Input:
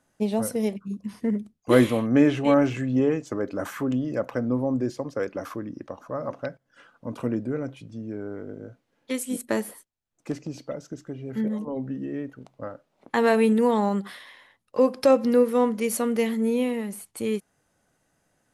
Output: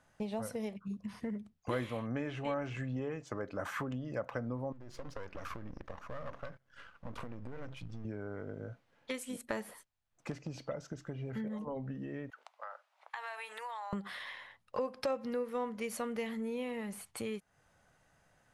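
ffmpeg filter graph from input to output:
-filter_complex "[0:a]asettb=1/sr,asplit=3[s0][s1][s2];[s0]atrim=end=4.724[s3];[s1]atrim=start=4.72:end=8.05,asetpts=PTS-STARTPTS,afade=t=in:d=0.004:c=qsin,afade=t=out:st=3.326:d=0.004:c=qsin,aeval=exprs='if(lt(val(0),0),0.251*val(0),val(0))':c=same,equalizer=f=730:t=o:w=0.65:g=-5,acompressor=threshold=0.0126:ratio=8:attack=3.2:release=140:knee=1:detection=peak[s4];[s2]atrim=start=8.046[s5];[s3][s4]acrossfade=d=0.004:c1=hsin:c2=qsin[s6];[s6][s5]acrossfade=d=0.004:c1=qsin:c2=hsin,asettb=1/sr,asplit=3[s7][s8][s9];[s7]atrim=end=12.304[s10];[s8]atrim=start=12.3:end=13.93,asetpts=PTS-STARTPTS,afade=t=in:d=0.004:c=qsin,afade=t=out:st=1.626:d=0.004:c=qsin,highpass=f=790:w=0.5412,highpass=f=790:w=1.3066,acompressor=threshold=0.00794:ratio=6:attack=3.2:release=140:knee=1:detection=peak[s11];[s9]atrim=start=13.926[s12];[s10][s11]acrossfade=d=0.004:c1=hsin:c2=qsin[s13];[s13][s12]acrossfade=d=0.004:c1=qsin:c2=hsin,acompressor=threshold=0.0141:ratio=3,lowpass=f=2800:p=1,equalizer=f=300:w=0.87:g=-10.5,volume=1.78"

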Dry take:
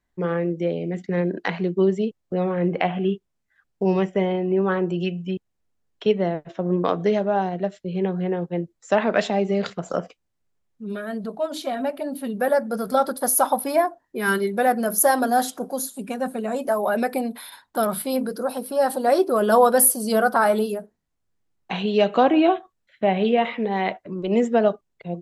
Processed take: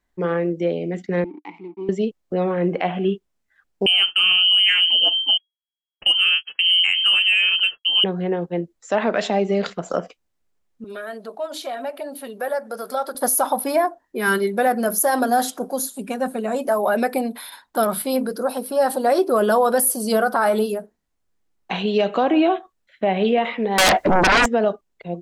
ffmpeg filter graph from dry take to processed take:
-filter_complex "[0:a]asettb=1/sr,asplit=3[s0][s1][s2];[s0]atrim=end=1.244[s3];[s1]atrim=start=1.24:end=1.89,asetpts=PTS-STARTPTS,afade=t=in:d=0.004:c=qsin,afade=t=out:st=0.646:d=0.004:c=qsin,aeval=exprs='sgn(val(0))*max(abs(val(0))-0.0133,0)':c=same,acompressor=mode=upward:threshold=0.0501:ratio=2.5:attack=3.2:release=140:knee=2.83:detection=peak,asplit=3[s4][s5][s6];[s4]bandpass=f=300:t=q:w=8,volume=1[s7];[s5]bandpass=f=870:t=q:w=8,volume=0.501[s8];[s6]bandpass=f=2240:t=q:w=8,volume=0.355[s9];[s7][s8][s9]amix=inputs=3:normalize=0[s10];[s2]atrim=start=1.886[s11];[s3][s10]acrossfade=d=0.004:c1=hsin:c2=qsin[s12];[s12][s11]acrossfade=d=0.004:c1=qsin:c2=hsin,asettb=1/sr,asplit=3[s13][s14][s15];[s13]atrim=end=3.864[s16];[s14]atrim=start=3.86:end=8.04,asetpts=PTS-STARTPTS,afade=t=in:d=0.004:c=qsin,afade=t=out:st=4.176:d=0.004:c=qsin,agate=range=0.0224:threshold=0.0178:ratio=3:release=100:detection=peak,lowpass=f=2800:t=q:w=0.5098,lowpass=f=2800:t=q:w=0.6013,lowpass=f=2800:t=q:w=0.9,lowpass=f=2800:t=q:w=2.563,afreqshift=-3300,acontrast=43[s17];[s15]atrim=start=8.036[s18];[s16][s17]acrossfade=d=0.004:c1=hsin:c2=qsin[s19];[s19][s18]acrossfade=d=0.004:c1=qsin:c2=hsin,asettb=1/sr,asplit=3[s20][s21][s22];[s20]atrim=end=10.844[s23];[s21]atrim=start=10.84:end=13.15,asetpts=PTS-STARTPTS,afade=t=in:d=0.004:c=qsin,afade=t=out:st=2.306:d=0.004:c=qsin,highpass=430,acompressor=threshold=0.0224:ratio=1.5:attack=3.2:release=140:knee=1:detection=peak[s24];[s22]atrim=start=13.146[s25];[s23][s24]acrossfade=d=0.004:c1=hsin:c2=qsin[s26];[s26][s25]acrossfade=d=0.004:c1=qsin:c2=hsin,asettb=1/sr,asplit=3[s27][s28][s29];[s27]atrim=end=23.784[s30];[s28]atrim=start=23.78:end=24.46,asetpts=PTS-STARTPTS,afade=t=in:d=0.004:c=qsin,afade=t=out:st=0.676:d=0.004:c=qsin,acompressor=threshold=0.0891:ratio=6:attack=3.2:release=140:knee=1:detection=peak,aeval=exprs='0.2*sin(PI/2*7.94*val(0)/0.2)':c=same[s31];[s29]atrim=start=24.456[s32];[s30][s31]acrossfade=d=0.004:c1=hsin:c2=qsin[s33];[s33][s32]acrossfade=d=0.004:c1=qsin:c2=hsin,equalizer=f=120:w=1.7:g=-9,alimiter=level_in=3.76:limit=0.891:release=50:level=0:latency=1,volume=0.376"

